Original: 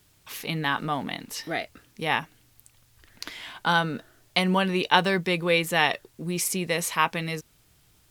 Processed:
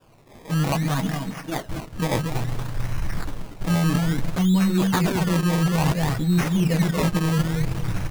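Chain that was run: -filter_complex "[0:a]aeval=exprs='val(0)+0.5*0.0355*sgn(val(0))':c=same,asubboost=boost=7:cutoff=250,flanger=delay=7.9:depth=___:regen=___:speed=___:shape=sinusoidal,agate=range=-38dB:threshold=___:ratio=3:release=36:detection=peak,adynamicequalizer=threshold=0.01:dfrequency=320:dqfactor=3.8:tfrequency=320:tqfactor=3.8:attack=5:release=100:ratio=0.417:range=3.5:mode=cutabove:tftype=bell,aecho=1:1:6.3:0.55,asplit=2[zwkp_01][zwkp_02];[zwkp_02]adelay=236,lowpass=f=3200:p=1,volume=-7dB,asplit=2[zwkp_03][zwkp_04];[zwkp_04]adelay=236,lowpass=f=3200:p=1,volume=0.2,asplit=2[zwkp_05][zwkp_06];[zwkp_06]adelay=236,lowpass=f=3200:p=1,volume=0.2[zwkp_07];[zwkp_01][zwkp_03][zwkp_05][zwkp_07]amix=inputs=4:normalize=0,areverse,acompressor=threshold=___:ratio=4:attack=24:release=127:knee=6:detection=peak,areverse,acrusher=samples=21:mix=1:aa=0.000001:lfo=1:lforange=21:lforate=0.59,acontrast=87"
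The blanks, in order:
8.5, -16, 0.4, -25dB, -28dB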